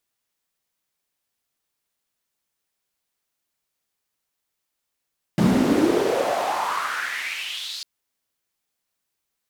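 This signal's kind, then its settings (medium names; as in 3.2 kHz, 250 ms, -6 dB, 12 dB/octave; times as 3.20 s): swept filtered noise white, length 2.45 s bandpass, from 180 Hz, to 4.5 kHz, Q 4.8, exponential, gain ramp -30.5 dB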